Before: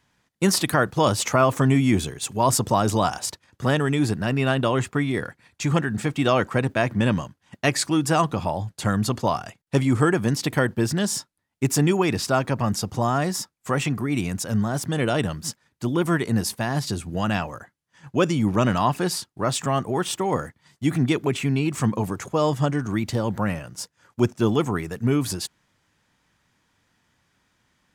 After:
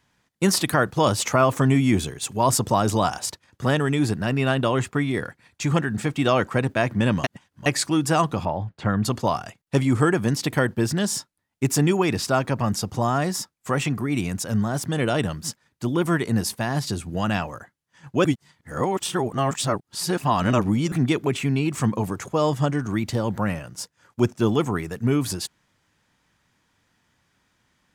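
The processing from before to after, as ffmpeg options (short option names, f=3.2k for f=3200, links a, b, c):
-filter_complex "[0:a]asettb=1/sr,asplit=3[a][b][c];[a]atrim=end=8.454[d];[b]atrim=start=8.45:end=9.05,asetpts=PTS-STARTPTS,afade=t=in:d=0.004:c=qsin,afade=t=out:st=0.596:d=0.004:c=qsin,lowpass=2.5k[e];[c]atrim=start=9.046[f];[d][e]acrossfade=d=0.004:c1=hsin:c2=qsin[g];[g][f]acrossfade=d=0.004:c1=qsin:c2=hsin,asplit=5[h][i][j][k][l];[h]atrim=end=7.242[m];[i]atrim=start=7.238:end=7.662,asetpts=PTS-STARTPTS,areverse[n];[j]atrim=start=7.658:end=18.252[o];[k]atrim=start=18.248:end=20.922,asetpts=PTS-STARTPTS,areverse[p];[l]atrim=start=20.918[q];[m][n]acrossfade=d=0.004:c1=hsin:c2=hsin[r];[r][o]acrossfade=d=0.004:c1=hsin:c2=hsin[s];[s][p]acrossfade=d=0.004:c1=hsin:c2=hsin[t];[t][q]acrossfade=d=0.004:c1=hsin:c2=hsin"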